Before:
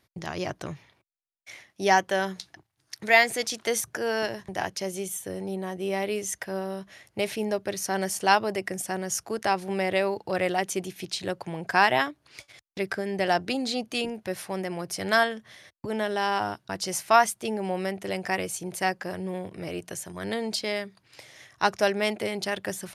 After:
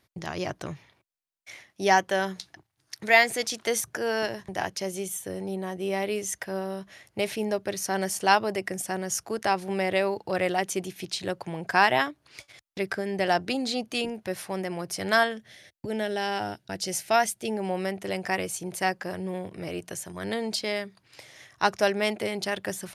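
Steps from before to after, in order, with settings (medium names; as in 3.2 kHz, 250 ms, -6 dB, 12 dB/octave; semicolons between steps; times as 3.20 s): 15.37–17.50 s: peaking EQ 1.1 kHz -13 dB 0.49 oct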